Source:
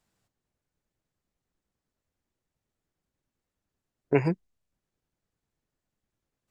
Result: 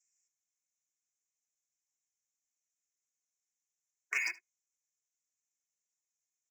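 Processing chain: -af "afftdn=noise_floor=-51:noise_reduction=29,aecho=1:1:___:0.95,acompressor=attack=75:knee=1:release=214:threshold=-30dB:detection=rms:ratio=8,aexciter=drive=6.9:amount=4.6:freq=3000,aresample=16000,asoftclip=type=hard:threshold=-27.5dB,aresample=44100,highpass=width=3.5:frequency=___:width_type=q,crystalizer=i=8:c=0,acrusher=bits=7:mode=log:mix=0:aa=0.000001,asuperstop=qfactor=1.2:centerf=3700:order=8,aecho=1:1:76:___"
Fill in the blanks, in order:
2.8, 2100, 0.0891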